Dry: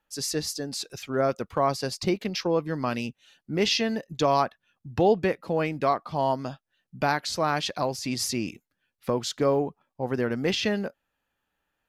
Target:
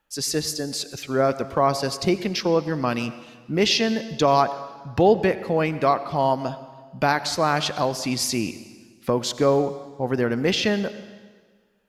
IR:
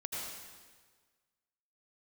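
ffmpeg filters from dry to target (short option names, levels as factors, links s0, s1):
-filter_complex "[0:a]asplit=2[s0][s1];[1:a]atrim=start_sample=2205,asetrate=42777,aresample=44100[s2];[s1][s2]afir=irnorm=-1:irlink=0,volume=0.224[s3];[s0][s3]amix=inputs=2:normalize=0,volume=1.41"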